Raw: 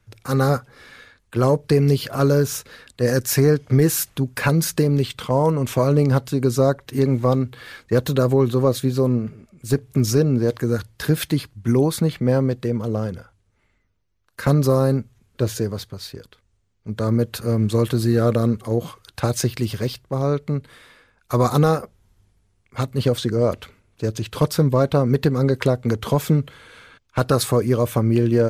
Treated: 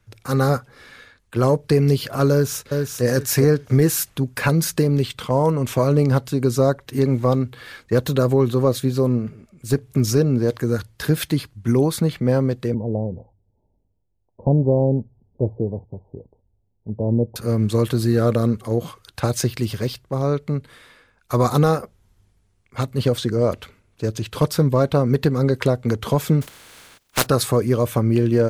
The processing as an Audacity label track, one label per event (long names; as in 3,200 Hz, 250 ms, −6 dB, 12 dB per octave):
2.310000	3.040000	delay throw 400 ms, feedback 25%, level −4.5 dB
12.740000	17.360000	Butterworth low-pass 920 Hz 96 dB per octave
26.410000	27.250000	compressing power law on the bin magnitudes exponent 0.33